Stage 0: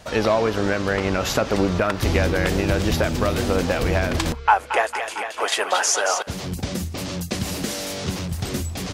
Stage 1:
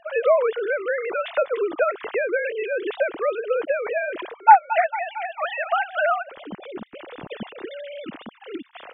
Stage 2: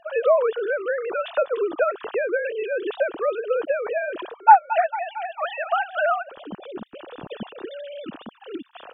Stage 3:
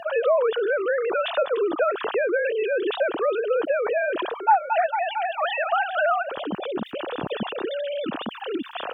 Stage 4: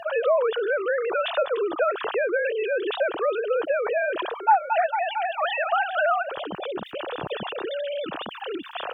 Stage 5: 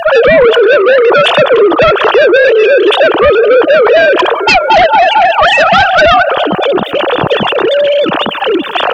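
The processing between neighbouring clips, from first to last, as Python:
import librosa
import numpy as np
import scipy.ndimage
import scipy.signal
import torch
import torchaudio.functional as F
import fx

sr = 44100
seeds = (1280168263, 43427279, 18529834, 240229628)

y1 = fx.sine_speech(x, sr)
y1 = y1 * 10.0 ** (-1.5 / 20.0)
y2 = fx.peak_eq(y1, sr, hz=2100.0, db=-15.0, octaves=0.24)
y3 = scipy.signal.sosfilt(scipy.signal.butter(2, 74.0, 'highpass', fs=sr, output='sos'), y2)
y3 = fx.env_flatten(y3, sr, amount_pct=50)
y3 = y3 * 10.0 ** (-7.0 / 20.0)
y4 = fx.peak_eq(y3, sr, hz=240.0, db=-11.0, octaves=0.77)
y5 = fx.echo_bbd(y4, sr, ms=206, stages=2048, feedback_pct=65, wet_db=-18.0)
y5 = fx.fold_sine(y5, sr, drive_db=11, ceiling_db=-8.5)
y5 = y5 * 10.0 ** (6.5 / 20.0)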